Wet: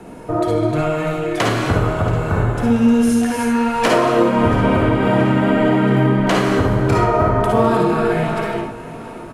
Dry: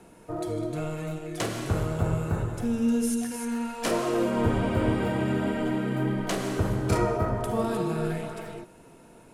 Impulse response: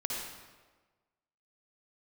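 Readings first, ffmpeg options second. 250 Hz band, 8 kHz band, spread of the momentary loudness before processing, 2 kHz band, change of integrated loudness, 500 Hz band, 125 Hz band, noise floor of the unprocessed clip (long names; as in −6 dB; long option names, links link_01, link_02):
+11.0 dB, +5.0 dB, 8 LU, +13.5 dB, +11.5 dB, +12.0 dB, +10.5 dB, −52 dBFS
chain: -filter_complex "[0:a]highshelf=frequency=3000:gain=-9,asplit=2[link_01][link_02];[link_02]acompressor=threshold=-35dB:ratio=6,volume=1dB[link_03];[link_01][link_03]amix=inputs=2:normalize=0,alimiter=limit=-16dB:level=0:latency=1:release=404,acrossover=split=720|4200[link_04][link_05][link_06];[link_05]dynaudnorm=framelen=160:gausssize=5:maxgain=6dB[link_07];[link_04][link_07][link_06]amix=inputs=3:normalize=0,aecho=1:1:680|1360|2040|2720|3400:0.112|0.064|0.0365|0.0208|0.0118[link_08];[1:a]atrim=start_sample=2205,atrim=end_sample=3528[link_09];[link_08][link_09]afir=irnorm=-1:irlink=0,volume=8.5dB"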